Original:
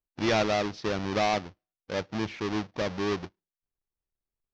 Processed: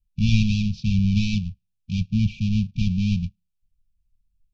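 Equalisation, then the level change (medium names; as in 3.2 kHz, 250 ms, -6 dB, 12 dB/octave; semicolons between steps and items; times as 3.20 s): brick-wall FIR band-stop 230–2300 Hz; tilt EQ -3.5 dB/octave; treble shelf 5.5 kHz +5 dB; +6.5 dB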